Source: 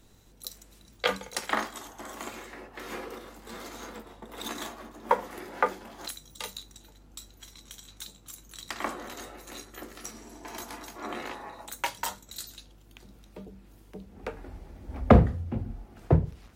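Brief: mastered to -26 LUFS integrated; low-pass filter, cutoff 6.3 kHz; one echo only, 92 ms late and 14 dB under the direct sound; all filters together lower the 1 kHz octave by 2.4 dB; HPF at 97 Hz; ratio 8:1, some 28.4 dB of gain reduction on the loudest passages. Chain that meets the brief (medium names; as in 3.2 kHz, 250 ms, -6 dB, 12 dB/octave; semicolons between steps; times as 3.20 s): high-pass 97 Hz; low-pass 6.3 kHz; peaking EQ 1 kHz -3 dB; compression 8:1, threshold -43 dBFS; delay 92 ms -14 dB; trim +22.5 dB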